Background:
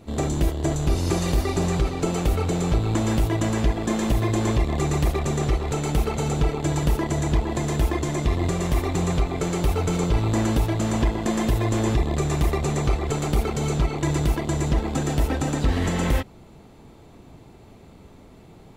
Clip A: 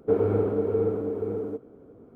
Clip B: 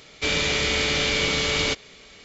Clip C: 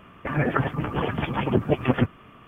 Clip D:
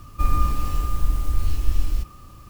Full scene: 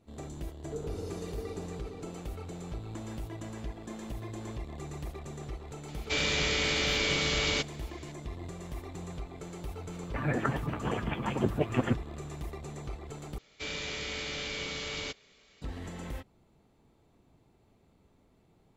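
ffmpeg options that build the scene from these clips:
-filter_complex "[2:a]asplit=2[s0][s1];[0:a]volume=0.126,asplit=2[s2][s3];[s2]atrim=end=13.384[s4];[s1]atrim=end=2.24,asetpts=PTS-STARTPTS,volume=0.2[s5];[s3]atrim=start=15.616[s6];[1:a]atrim=end=2.15,asetpts=PTS-STARTPTS,volume=0.141,afade=t=in:d=0.004:c=hsin,afade=t=out:st=2.146:d=0.004:c=hsin,adelay=640[s7];[s0]atrim=end=2.24,asetpts=PTS-STARTPTS,volume=0.501,afade=t=in:d=0.004:c=hsin,afade=t=out:st=2.236:d=0.004:c=hsin,adelay=5880[s8];[3:a]atrim=end=2.47,asetpts=PTS-STARTPTS,volume=0.447,afade=t=in:d=0.004:c=hsin,afade=t=out:st=2.466:d=0.004:c=hsin,adelay=9890[s9];[s4][s5]acrossfade=d=0.004:c1=hsin:c2=hsin[s10];[s10][s6]acrossfade=d=0.004:c1=hsin:c2=hsin[s11];[s11][s7][s8][s9]amix=inputs=4:normalize=0"

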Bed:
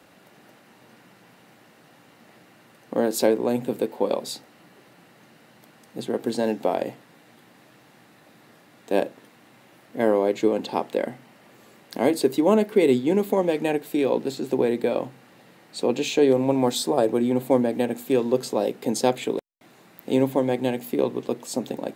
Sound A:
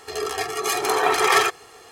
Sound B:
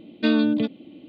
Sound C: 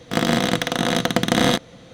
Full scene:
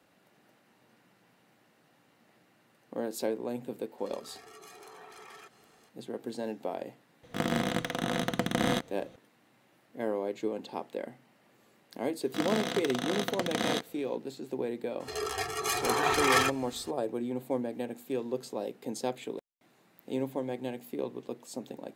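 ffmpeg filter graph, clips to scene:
-filter_complex "[1:a]asplit=2[s0][s1];[3:a]asplit=2[s2][s3];[0:a]volume=0.251[s4];[s0]acompressor=threshold=0.0282:ratio=6:attack=3.2:release=140:knee=1:detection=peak[s5];[s2]equalizer=f=4800:t=o:w=1.1:g=-5.5[s6];[s3]highpass=f=200:p=1[s7];[s1]asubboost=boost=12:cutoff=180[s8];[s5]atrim=end=1.91,asetpts=PTS-STARTPTS,volume=0.141,afade=t=in:d=0.004:c=hsin,afade=t=out:st=1.906:d=0.004:c=hsin,adelay=3980[s9];[s6]atrim=end=1.93,asetpts=PTS-STARTPTS,volume=0.316,afade=t=in:d=0.004:c=hsin,afade=t=out:st=1.926:d=0.004:c=hsin,adelay=7230[s10];[s7]atrim=end=1.93,asetpts=PTS-STARTPTS,volume=0.251,afade=t=in:d=0.004:c=hsin,afade=t=out:st=1.926:d=0.004:c=hsin,adelay=12230[s11];[s8]atrim=end=1.91,asetpts=PTS-STARTPTS,volume=0.473,afade=t=in:d=0.004:c=hsin,afade=t=out:st=1.906:d=0.004:c=hsin,adelay=15000[s12];[s4][s9][s10][s11][s12]amix=inputs=5:normalize=0"

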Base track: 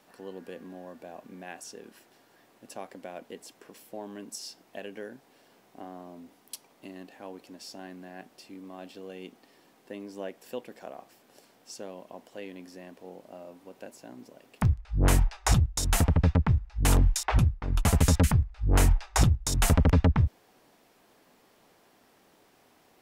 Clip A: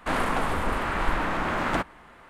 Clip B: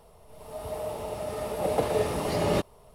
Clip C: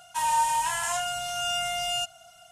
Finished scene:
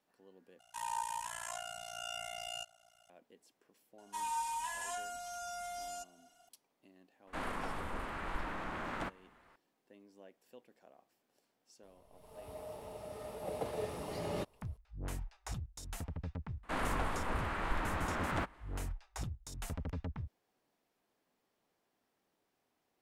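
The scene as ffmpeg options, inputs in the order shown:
-filter_complex "[3:a]asplit=2[s0][s1];[1:a]asplit=2[s2][s3];[0:a]volume=0.106[s4];[s0]tremolo=f=58:d=0.974[s5];[s1]aecho=1:1:4.1:0.94[s6];[s4]asplit=2[s7][s8];[s7]atrim=end=0.594[s9];[s5]atrim=end=2.51,asetpts=PTS-STARTPTS,volume=0.299[s10];[s8]atrim=start=3.096[s11];[s6]atrim=end=2.51,asetpts=PTS-STARTPTS,volume=0.158,afade=t=in:d=0.004:c=hsin,afade=t=out:st=2.506:d=0.004:c=hsin,adelay=3980[s12];[s2]atrim=end=2.29,asetpts=PTS-STARTPTS,volume=0.2,afade=t=in:d=0.004:c=hsin,afade=t=out:st=2.286:d=0.004:c=hsin,adelay=7270[s13];[2:a]atrim=end=2.94,asetpts=PTS-STARTPTS,volume=0.224,afade=t=in:d=0.004:c=hsin,afade=t=out:st=2.936:d=0.004:c=hsin,adelay=11830[s14];[s3]atrim=end=2.29,asetpts=PTS-STARTPTS,volume=0.299,afade=t=in:d=0.004:c=hsin,afade=t=out:st=2.286:d=0.004:c=hsin,adelay=16630[s15];[s9][s10]acrossfade=d=0.004:c1=hsin:c2=hsin[s16];[s16][s11]acrossfade=d=0.004:c1=hsin:c2=hsin[s17];[s17][s12][s13][s14][s15]amix=inputs=5:normalize=0"

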